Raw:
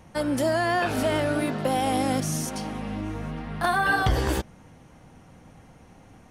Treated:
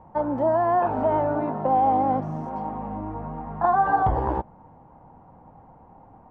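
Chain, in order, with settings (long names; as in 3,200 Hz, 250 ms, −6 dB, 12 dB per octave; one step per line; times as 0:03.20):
low-pass with resonance 900 Hz, resonance Q 4.3
level −2.5 dB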